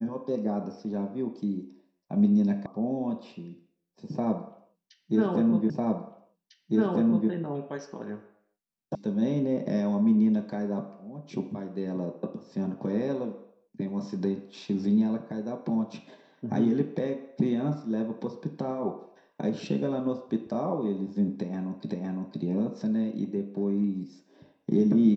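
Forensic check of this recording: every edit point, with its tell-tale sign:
0:02.66: cut off before it has died away
0:05.70: the same again, the last 1.6 s
0:08.95: cut off before it has died away
0:21.90: the same again, the last 0.51 s

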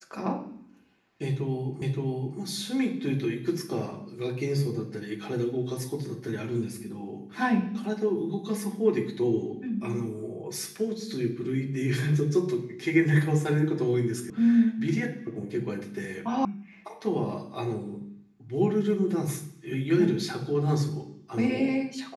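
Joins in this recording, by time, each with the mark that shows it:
0:01.82: the same again, the last 0.57 s
0:14.30: cut off before it has died away
0:16.45: cut off before it has died away

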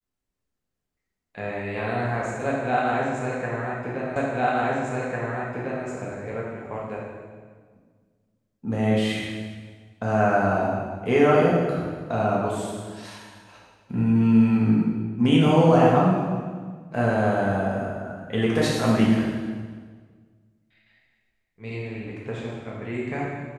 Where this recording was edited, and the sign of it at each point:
0:04.16: the same again, the last 1.7 s

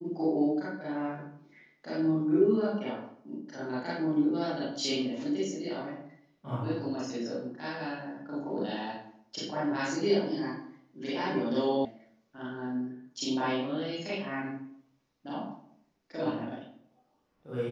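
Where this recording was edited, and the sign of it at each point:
0:11.85: cut off before it has died away

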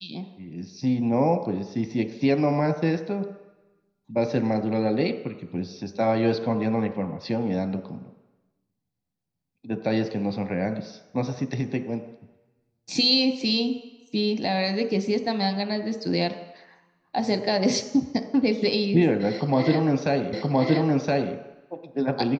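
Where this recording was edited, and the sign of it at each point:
0:20.33: the same again, the last 1.02 s

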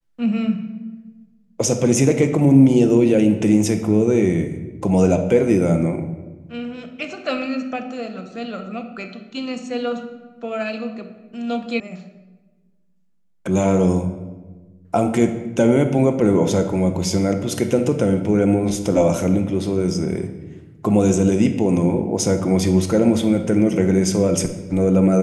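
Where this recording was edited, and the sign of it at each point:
0:11.80: cut off before it has died away

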